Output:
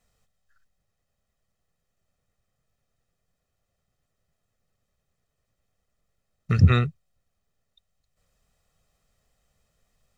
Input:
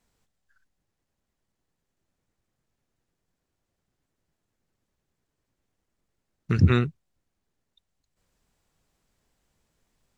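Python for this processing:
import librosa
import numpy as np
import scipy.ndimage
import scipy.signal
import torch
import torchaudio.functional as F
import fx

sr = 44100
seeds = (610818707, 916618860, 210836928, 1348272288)

y = x + 0.61 * np.pad(x, (int(1.6 * sr / 1000.0), 0))[:len(x)]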